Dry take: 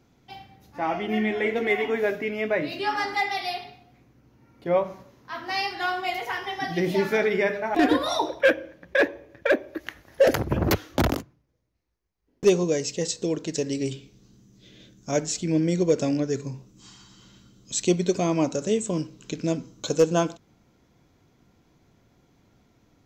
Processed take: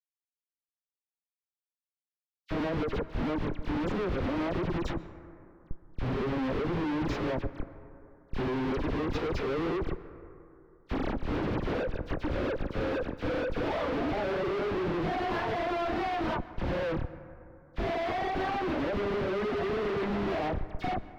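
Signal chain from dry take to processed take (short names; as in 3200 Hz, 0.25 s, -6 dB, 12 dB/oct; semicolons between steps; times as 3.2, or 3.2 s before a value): whole clip reversed; compressor 16:1, threshold -31 dBFS, peak gain reduction 19 dB; HPF 350 Hz 12 dB/oct; tilt shelf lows +6 dB, about 1100 Hz; analogue delay 0.167 s, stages 4096, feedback 47%, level -18.5 dB; Schmitt trigger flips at -42.5 dBFS; pitch shift -2.5 st; dispersion lows, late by 62 ms, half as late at 2100 Hz; gate -52 dBFS, range -18 dB; air absorption 340 m; plate-style reverb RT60 3 s, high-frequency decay 0.25×, pre-delay 0.12 s, DRR 15 dB; speed mistake 44.1 kHz file played as 48 kHz; gain +7.5 dB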